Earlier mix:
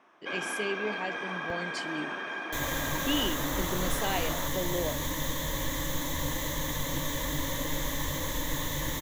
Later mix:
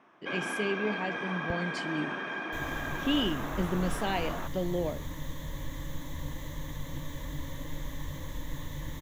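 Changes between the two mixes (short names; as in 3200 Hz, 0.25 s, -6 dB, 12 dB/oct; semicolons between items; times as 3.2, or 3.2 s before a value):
second sound -11.0 dB; master: add tone controls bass +9 dB, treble -5 dB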